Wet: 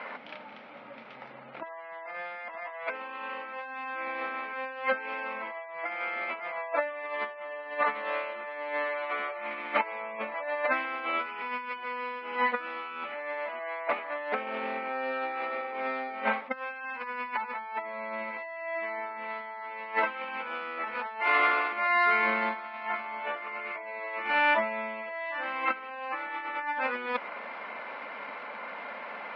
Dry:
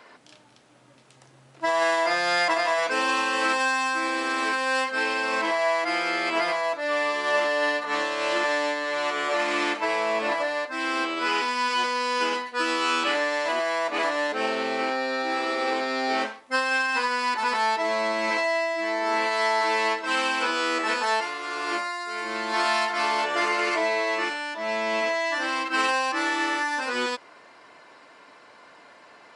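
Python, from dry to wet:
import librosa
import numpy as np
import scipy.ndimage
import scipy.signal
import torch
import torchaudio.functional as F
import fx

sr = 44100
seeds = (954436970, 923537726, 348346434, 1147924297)

y = fx.cvsd(x, sr, bps=32000)
y = fx.spec_gate(y, sr, threshold_db=-25, keep='strong')
y = fx.over_compress(y, sr, threshold_db=-33.0, ratio=-0.5)
y = fx.cabinet(y, sr, low_hz=180.0, low_slope=24, high_hz=3200.0, hz=(220.0, 330.0, 550.0, 840.0, 1300.0, 2200.0), db=(8, -7, 7, 7, 7, 10))
y = fx.doppler_dist(y, sr, depth_ms=0.1, at=(13.86, 15.87))
y = y * librosa.db_to_amplitude(-3.0)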